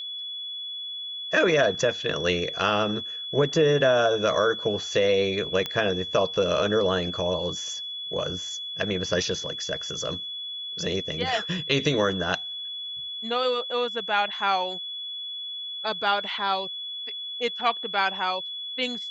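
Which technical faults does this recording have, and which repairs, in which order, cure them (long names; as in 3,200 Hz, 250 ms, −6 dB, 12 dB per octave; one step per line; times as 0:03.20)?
whistle 3,400 Hz −32 dBFS
0:05.66: click −14 dBFS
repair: click removal
notch filter 3,400 Hz, Q 30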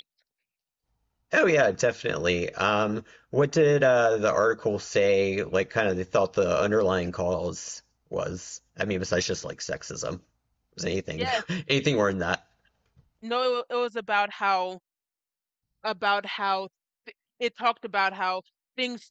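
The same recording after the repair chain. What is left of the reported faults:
none of them is left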